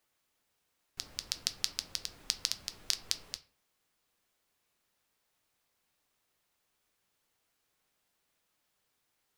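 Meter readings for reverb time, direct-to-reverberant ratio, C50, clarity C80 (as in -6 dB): 0.45 s, 9.0 dB, 16.5 dB, 20.0 dB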